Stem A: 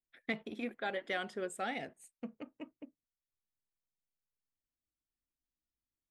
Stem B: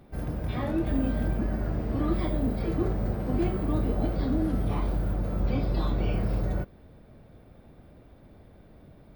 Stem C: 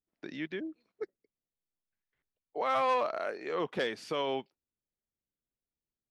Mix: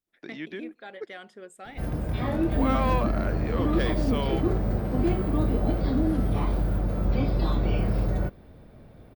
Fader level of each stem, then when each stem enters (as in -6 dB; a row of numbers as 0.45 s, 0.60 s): -5.5 dB, +2.5 dB, +0.5 dB; 0.00 s, 1.65 s, 0.00 s